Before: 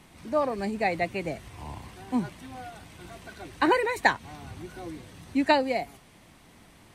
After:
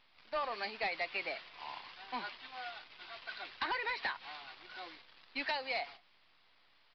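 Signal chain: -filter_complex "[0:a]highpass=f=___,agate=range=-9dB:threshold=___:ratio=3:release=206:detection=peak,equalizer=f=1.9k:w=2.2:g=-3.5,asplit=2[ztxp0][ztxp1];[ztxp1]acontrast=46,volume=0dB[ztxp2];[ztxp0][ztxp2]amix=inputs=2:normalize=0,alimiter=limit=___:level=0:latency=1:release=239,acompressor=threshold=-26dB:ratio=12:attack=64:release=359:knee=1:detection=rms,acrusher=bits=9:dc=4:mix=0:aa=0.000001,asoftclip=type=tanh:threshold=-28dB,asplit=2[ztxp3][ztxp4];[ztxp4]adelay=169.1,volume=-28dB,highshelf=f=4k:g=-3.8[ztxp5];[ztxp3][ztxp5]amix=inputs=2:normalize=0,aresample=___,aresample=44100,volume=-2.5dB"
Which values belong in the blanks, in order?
1.3k, -48dB, -9dB, 11025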